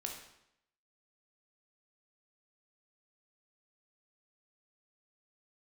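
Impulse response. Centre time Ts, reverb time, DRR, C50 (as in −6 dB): 33 ms, 0.80 s, 1.0 dB, 5.0 dB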